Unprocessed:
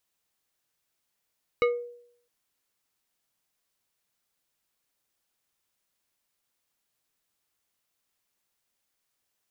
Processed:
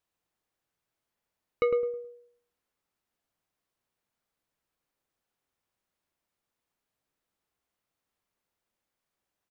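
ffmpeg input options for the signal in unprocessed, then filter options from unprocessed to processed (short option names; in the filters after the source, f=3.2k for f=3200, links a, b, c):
-f lavfi -i "aevalsrc='0.141*pow(10,-3*t/0.66)*sin(2*PI*481*t+0.94*pow(10,-3*t/0.33)*sin(2*PI*3.54*481*t))':d=0.66:s=44100"
-filter_complex "[0:a]highshelf=f=2.5k:g=-10.5,asplit=2[a][b];[b]adelay=106,lowpass=f=1.3k:p=1,volume=-4.5dB,asplit=2[c][d];[d]adelay=106,lowpass=f=1.3k:p=1,volume=0.32,asplit=2[e][f];[f]adelay=106,lowpass=f=1.3k:p=1,volume=0.32,asplit=2[g][h];[h]adelay=106,lowpass=f=1.3k:p=1,volume=0.32[i];[c][e][g][i]amix=inputs=4:normalize=0[j];[a][j]amix=inputs=2:normalize=0"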